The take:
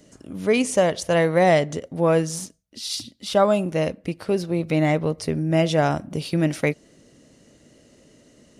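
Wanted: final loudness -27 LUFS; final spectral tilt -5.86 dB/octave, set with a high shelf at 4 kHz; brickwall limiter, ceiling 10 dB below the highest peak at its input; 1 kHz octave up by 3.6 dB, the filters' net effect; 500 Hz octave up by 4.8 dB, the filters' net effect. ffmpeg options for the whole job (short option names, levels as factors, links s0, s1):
-af "equalizer=f=500:t=o:g=5,equalizer=f=1000:t=o:g=3,highshelf=f=4000:g=-6,volume=0.631,alimiter=limit=0.15:level=0:latency=1"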